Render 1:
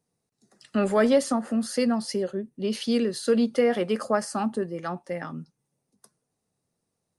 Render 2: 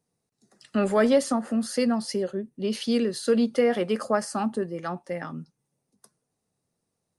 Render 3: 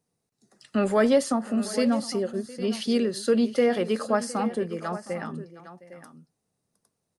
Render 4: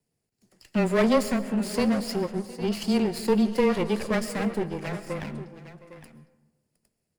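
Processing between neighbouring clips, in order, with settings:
no processing that can be heard
multi-tap delay 712/808 ms −19.5/−14 dB
lower of the sound and its delayed copy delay 0.41 ms; frequency shifter −14 Hz; convolution reverb RT60 1.2 s, pre-delay 90 ms, DRR 14 dB

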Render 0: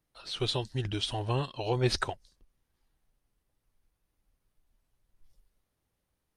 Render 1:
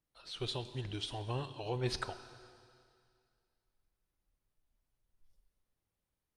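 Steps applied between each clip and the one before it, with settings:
convolution reverb RT60 2.3 s, pre-delay 14 ms, DRR 11 dB
level −8 dB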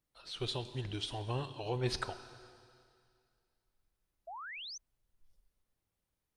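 sound drawn into the spectrogram rise, 0:04.27–0:04.78, 630–6,400 Hz −46 dBFS
level +1 dB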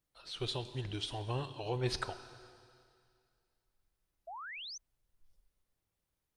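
parametric band 230 Hz −3 dB 0.23 octaves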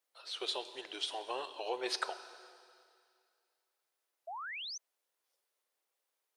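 high-pass filter 430 Hz 24 dB per octave
level +2.5 dB

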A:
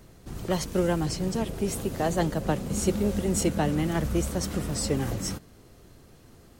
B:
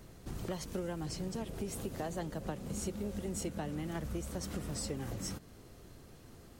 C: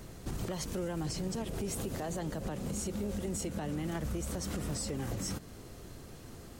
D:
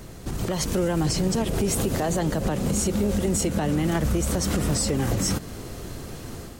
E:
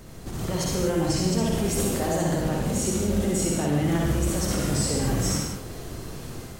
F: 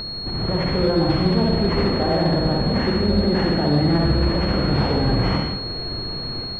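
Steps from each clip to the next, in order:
downward compressor 4 to 1, threshold −35 dBFS, peak gain reduction 14 dB; level −2 dB
parametric band 7,400 Hz +2 dB; brickwall limiter −33.5 dBFS, peak gain reduction 10 dB; level +6 dB
automatic gain control gain up to 6 dB; level +6.5 dB
convolution reverb, pre-delay 48 ms, DRR −2 dB; level −4.5 dB
upward compression, threshold −38 dBFS; switching amplifier with a slow clock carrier 4,300 Hz; level +5.5 dB

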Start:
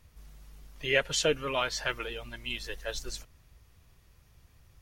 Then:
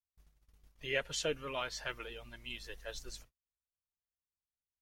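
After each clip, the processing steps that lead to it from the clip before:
noise gate −48 dBFS, range −40 dB
level −8.5 dB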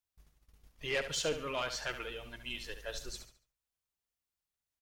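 soft clipping −29.5 dBFS, distortion −13 dB
on a send: repeating echo 71 ms, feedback 34%, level −10 dB
on the sum: level +3.5 dB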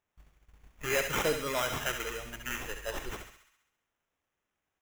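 sample-rate reduction 4,500 Hz, jitter 0%
delay with a high-pass on its return 67 ms, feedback 61%, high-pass 1,700 Hz, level −7.5 dB
level +4.5 dB

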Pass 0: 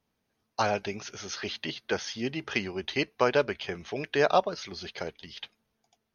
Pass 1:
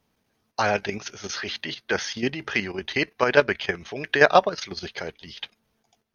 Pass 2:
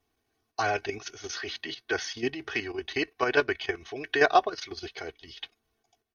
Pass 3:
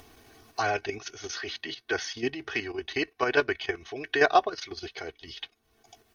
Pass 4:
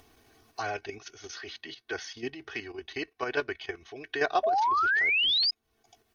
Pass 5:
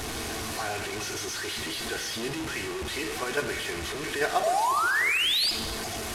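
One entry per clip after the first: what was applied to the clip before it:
dynamic equaliser 1,800 Hz, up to +7 dB, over −46 dBFS, Q 2.1; output level in coarse steps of 10 dB; level +8.5 dB
comb filter 2.7 ms, depth 83%; level −7 dB
upward compression, threshold −36 dBFS
sound drawn into the spectrogram rise, 0:04.43–0:05.51, 610–5,100 Hz −19 dBFS; level −6 dB
linear delta modulator 64 kbit/s, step −28 dBFS; reverb whose tail is shaped and stops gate 460 ms falling, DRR 6.5 dB

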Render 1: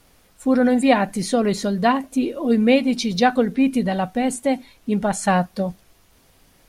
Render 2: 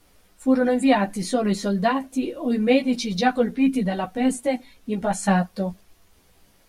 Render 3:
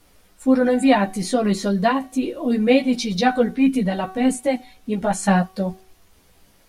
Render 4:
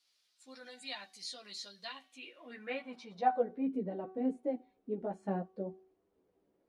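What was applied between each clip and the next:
multi-voice chorus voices 6, 0.49 Hz, delay 13 ms, depth 3.2 ms
hum removal 376.7 Hz, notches 15; level +2.5 dB
band-pass filter sweep 4,400 Hz → 380 Hz, 0:01.82–0:03.82; level −8 dB

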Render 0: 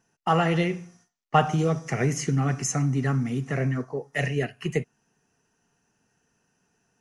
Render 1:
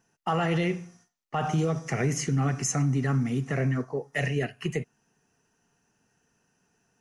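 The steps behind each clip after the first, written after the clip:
brickwall limiter −17.5 dBFS, peak gain reduction 11 dB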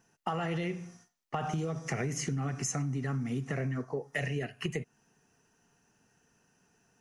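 downward compressor, threshold −32 dBFS, peak gain reduction 10 dB
level +1.5 dB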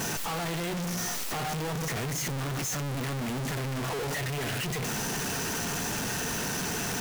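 sign of each sample alone
level +4.5 dB

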